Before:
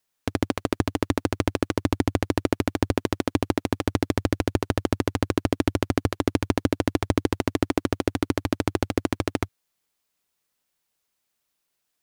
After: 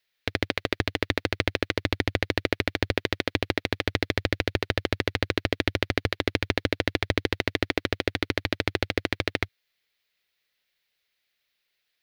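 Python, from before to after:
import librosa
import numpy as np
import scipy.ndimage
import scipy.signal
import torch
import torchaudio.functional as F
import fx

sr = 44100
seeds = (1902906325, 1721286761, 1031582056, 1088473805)

y = fx.graphic_eq(x, sr, hz=(250, 500, 1000, 2000, 4000, 8000), db=(-6, 4, -6, 11, 10, -9))
y = y * 10.0 ** (-3.0 / 20.0)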